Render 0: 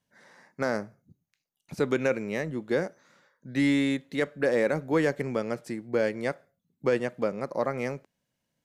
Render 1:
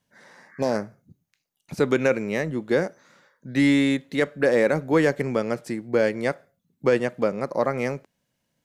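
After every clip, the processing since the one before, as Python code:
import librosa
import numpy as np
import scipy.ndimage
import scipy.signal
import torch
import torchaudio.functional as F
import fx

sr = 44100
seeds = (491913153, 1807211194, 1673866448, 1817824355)

y = fx.spec_repair(x, sr, seeds[0], start_s=0.51, length_s=0.23, low_hz=1100.0, high_hz=2300.0, source='both')
y = y * 10.0 ** (5.0 / 20.0)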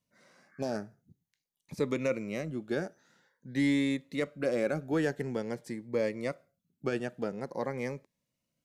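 y = fx.notch_cascade(x, sr, direction='rising', hz=0.48)
y = y * 10.0 ** (-8.0 / 20.0)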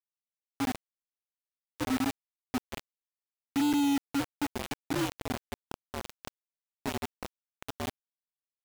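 y = fx.partial_stretch(x, sr, pct=127)
y = fx.formant_cascade(y, sr, vowel='i')
y = fx.quant_companded(y, sr, bits=2)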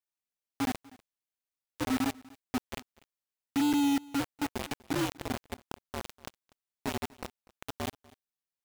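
y = x + 10.0 ** (-23.0 / 20.0) * np.pad(x, (int(244 * sr / 1000.0), 0))[:len(x)]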